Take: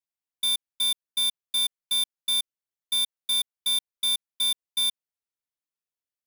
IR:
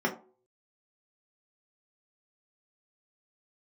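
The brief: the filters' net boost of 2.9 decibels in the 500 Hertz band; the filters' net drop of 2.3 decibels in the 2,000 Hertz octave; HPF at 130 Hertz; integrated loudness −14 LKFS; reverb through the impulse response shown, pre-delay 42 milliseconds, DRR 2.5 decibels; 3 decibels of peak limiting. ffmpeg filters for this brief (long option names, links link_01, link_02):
-filter_complex "[0:a]highpass=130,equalizer=frequency=500:width_type=o:gain=4.5,equalizer=frequency=2000:width_type=o:gain=-3,alimiter=level_in=0.5dB:limit=-24dB:level=0:latency=1,volume=-0.5dB,asplit=2[link_01][link_02];[1:a]atrim=start_sample=2205,adelay=42[link_03];[link_02][link_03]afir=irnorm=-1:irlink=0,volume=-13dB[link_04];[link_01][link_04]amix=inputs=2:normalize=0,volume=15dB"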